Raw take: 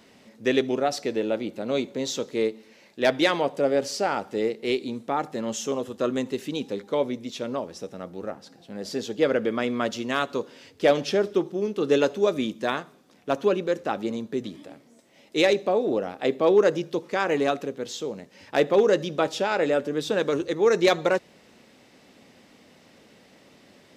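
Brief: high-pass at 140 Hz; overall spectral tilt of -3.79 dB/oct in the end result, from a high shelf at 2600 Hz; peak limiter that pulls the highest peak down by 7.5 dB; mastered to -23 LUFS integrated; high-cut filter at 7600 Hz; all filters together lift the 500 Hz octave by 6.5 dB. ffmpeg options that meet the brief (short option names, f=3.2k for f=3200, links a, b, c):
-af "highpass=140,lowpass=7.6k,equalizer=f=500:t=o:g=7.5,highshelf=f=2.6k:g=7.5,volume=-1.5dB,alimiter=limit=-10.5dB:level=0:latency=1"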